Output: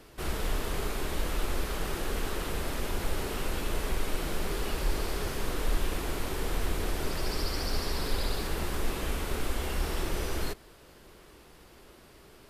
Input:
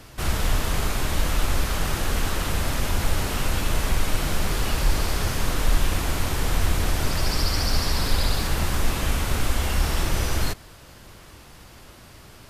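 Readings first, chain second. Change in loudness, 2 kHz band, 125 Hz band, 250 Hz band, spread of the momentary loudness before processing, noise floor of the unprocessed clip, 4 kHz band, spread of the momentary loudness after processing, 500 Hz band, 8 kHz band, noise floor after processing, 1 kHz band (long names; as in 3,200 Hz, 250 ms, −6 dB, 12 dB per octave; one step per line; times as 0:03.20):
−8.0 dB, −8.0 dB, −10.5 dB, −6.0 dB, 2 LU, −47 dBFS, −9.0 dB, 2 LU, −3.0 dB, −9.5 dB, −55 dBFS, −7.5 dB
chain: graphic EQ with 15 bands 100 Hz −8 dB, 400 Hz +8 dB, 6,300 Hz −3 dB
level −8 dB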